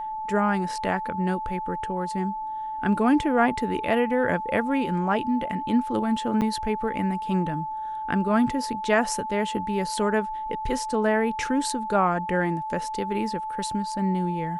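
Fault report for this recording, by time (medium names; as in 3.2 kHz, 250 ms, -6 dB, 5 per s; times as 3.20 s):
whine 870 Hz -29 dBFS
6.41–6.42 s: dropout 7.9 ms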